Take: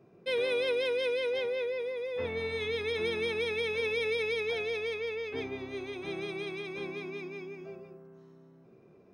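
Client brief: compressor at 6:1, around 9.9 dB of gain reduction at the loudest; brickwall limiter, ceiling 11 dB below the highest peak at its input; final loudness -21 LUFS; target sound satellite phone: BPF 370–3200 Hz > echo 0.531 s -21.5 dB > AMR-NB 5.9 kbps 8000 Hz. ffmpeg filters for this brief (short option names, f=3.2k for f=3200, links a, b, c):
-af "acompressor=threshold=-38dB:ratio=6,alimiter=level_in=16.5dB:limit=-24dB:level=0:latency=1,volume=-16.5dB,highpass=370,lowpass=3.2k,aecho=1:1:531:0.0841,volume=29dB" -ar 8000 -c:a libopencore_amrnb -b:a 5900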